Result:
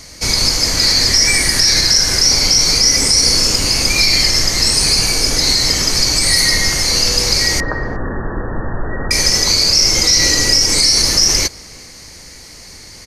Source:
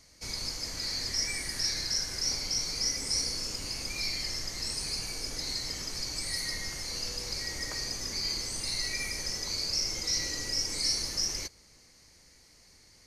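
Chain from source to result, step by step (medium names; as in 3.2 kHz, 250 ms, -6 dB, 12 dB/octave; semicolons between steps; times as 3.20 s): 7.60–9.11 s: brick-wall FIR low-pass 1.9 kHz; speakerphone echo 360 ms, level -25 dB; loudness maximiser +23 dB; trim -1 dB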